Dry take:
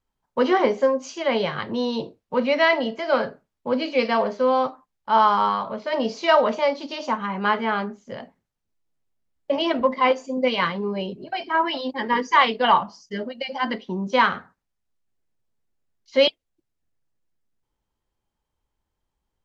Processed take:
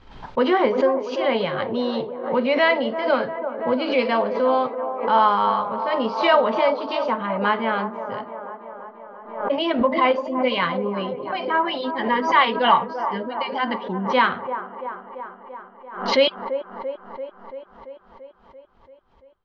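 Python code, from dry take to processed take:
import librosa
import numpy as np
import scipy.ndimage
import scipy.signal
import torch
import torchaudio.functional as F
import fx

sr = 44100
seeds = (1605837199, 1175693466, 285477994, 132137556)

y = scipy.signal.sosfilt(scipy.signal.butter(4, 4200.0, 'lowpass', fs=sr, output='sos'), x)
y = fx.echo_wet_bandpass(y, sr, ms=339, feedback_pct=68, hz=620.0, wet_db=-8.5)
y = fx.pre_swell(y, sr, db_per_s=87.0)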